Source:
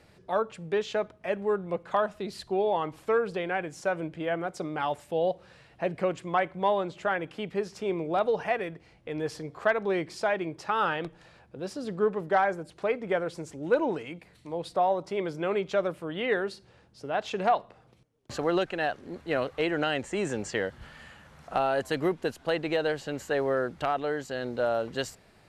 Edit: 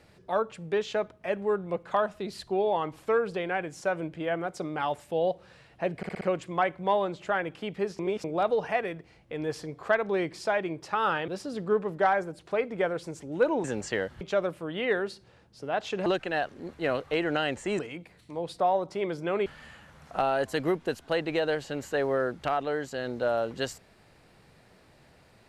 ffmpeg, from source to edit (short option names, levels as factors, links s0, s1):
-filter_complex "[0:a]asplit=13[s0][s1][s2][s3][s4][s5][s6][s7][s8][s9][s10][s11][s12];[s0]atrim=end=6.032[s13];[s1]atrim=start=5.968:end=6.032[s14];[s2]atrim=start=5.968:end=6.032[s15];[s3]atrim=start=5.968:end=6.032[s16];[s4]atrim=start=5.968:end=7.752[s17];[s5]atrim=start=7.748:end=8.002,asetpts=PTS-STARTPTS,areverse[s18];[s6]atrim=start=7.998:end=11.042[s19];[s7]atrim=start=11.588:end=13.952[s20];[s8]atrim=start=20.258:end=20.832[s21];[s9]atrim=start=15.618:end=17.472[s22];[s10]atrim=start=18.528:end=20.262[s23];[s11]atrim=start=13.948:end=15.622[s24];[s12]atrim=start=20.828[s25];[s13][s14]acrossfade=d=0.004:c1=hsin:c2=hsin[s26];[s26][s15]acrossfade=d=0.004:c1=hsin:c2=hsin[s27];[s27][s16]acrossfade=d=0.004:c1=hsin:c2=hsin[s28];[s28][s17]acrossfade=d=0.004:c1=hsin:c2=hsin[s29];[s29][s18]acrossfade=d=0.004:c1=hsin:c2=hsin[s30];[s30][s19]acrossfade=d=0.004:c1=hsin:c2=hsin[s31];[s31][s20]acrossfade=d=0.004:c1=hsin:c2=hsin[s32];[s32][s21]acrossfade=d=0.004:c1=hsin:c2=hsin[s33];[s33][s22]acrossfade=d=0.004:c1=hsin:c2=hsin[s34];[s34][s23]acrossfade=d=0.004:c1=hsin:c2=hsin[s35];[s35][s24]acrossfade=d=0.004:c1=hsin:c2=hsin[s36];[s36][s25]acrossfade=d=0.004:c1=hsin:c2=hsin"